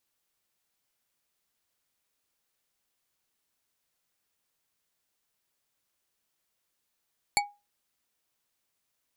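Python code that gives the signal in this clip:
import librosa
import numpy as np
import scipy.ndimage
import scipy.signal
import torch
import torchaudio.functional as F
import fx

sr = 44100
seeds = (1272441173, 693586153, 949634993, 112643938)

y = fx.strike_glass(sr, length_s=0.89, level_db=-20.5, body='bar', hz=819.0, decay_s=0.26, tilt_db=0.5, modes=5)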